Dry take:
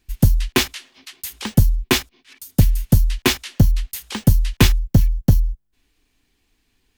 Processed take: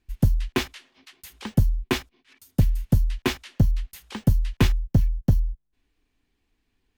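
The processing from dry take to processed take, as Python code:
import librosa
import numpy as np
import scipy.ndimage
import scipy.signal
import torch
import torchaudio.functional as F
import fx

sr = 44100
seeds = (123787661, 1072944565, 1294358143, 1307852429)

y = fx.high_shelf(x, sr, hz=3400.0, db=-10.0)
y = y * 10.0 ** (-5.5 / 20.0)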